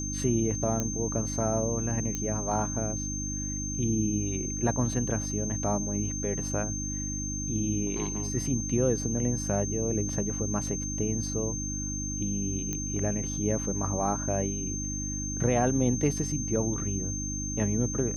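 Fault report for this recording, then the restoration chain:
hum 50 Hz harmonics 6 -35 dBFS
tone 6300 Hz -34 dBFS
0.8 pop -15 dBFS
2.15 pop -17 dBFS
12.73 pop -18 dBFS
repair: de-click; de-hum 50 Hz, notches 6; notch 6300 Hz, Q 30

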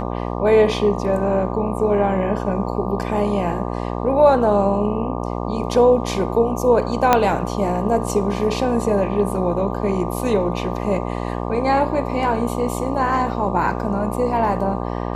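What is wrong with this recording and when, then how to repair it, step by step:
buzz 60 Hz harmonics 20 -25 dBFS
7.13 pop 0 dBFS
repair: de-click; de-hum 60 Hz, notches 20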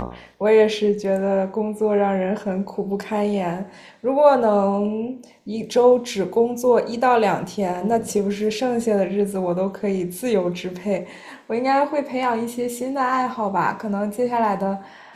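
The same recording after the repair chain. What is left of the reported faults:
7.13 pop

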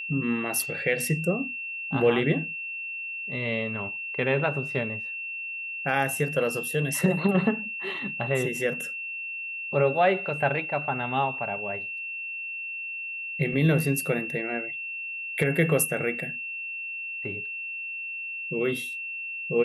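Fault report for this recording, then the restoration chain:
tone 2700 Hz -32 dBFS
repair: notch 2700 Hz, Q 30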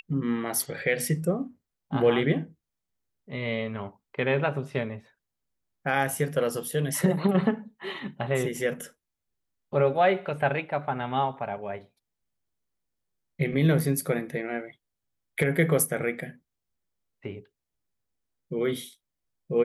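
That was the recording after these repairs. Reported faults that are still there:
none

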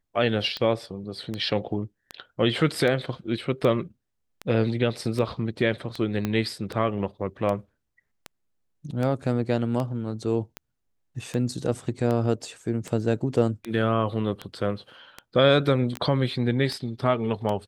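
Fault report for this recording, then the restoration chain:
tick 78 rpm -17 dBFS
6.25 pop -13 dBFS
15.97 pop -15 dBFS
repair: de-click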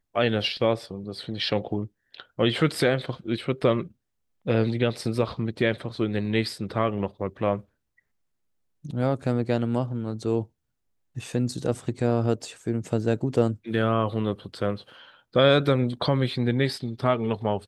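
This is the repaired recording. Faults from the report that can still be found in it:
6.25 pop

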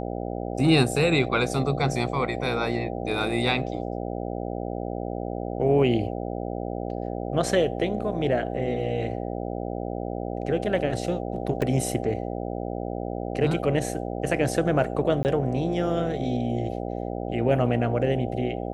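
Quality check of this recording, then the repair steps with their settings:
buzz 60 Hz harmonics 13 -31 dBFS
11.62 gap 2.5 ms
15.23–15.25 gap 19 ms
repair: de-hum 60 Hz, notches 13; interpolate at 11.62, 2.5 ms; interpolate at 15.23, 19 ms

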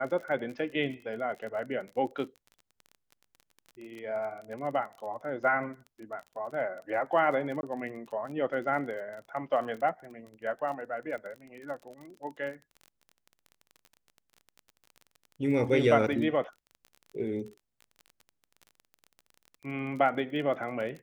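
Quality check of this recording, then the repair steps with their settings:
crackle 29/s -39 dBFS
7.61–7.63 gap 21 ms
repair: de-click; interpolate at 7.61, 21 ms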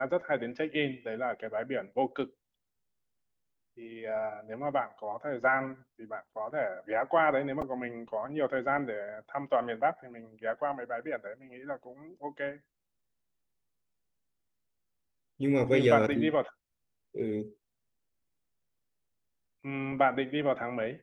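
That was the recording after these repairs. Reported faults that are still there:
none

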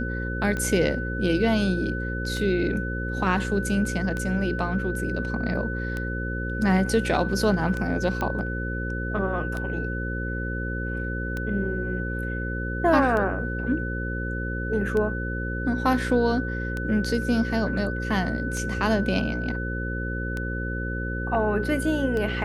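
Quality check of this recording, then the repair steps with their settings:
buzz 60 Hz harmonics 9 -30 dBFS
tick 33 1/3 rpm -17 dBFS
tone 1500 Hz -32 dBFS
8.21 pop -15 dBFS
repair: de-click; notch 1500 Hz, Q 30; de-hum 60 Hz, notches 9

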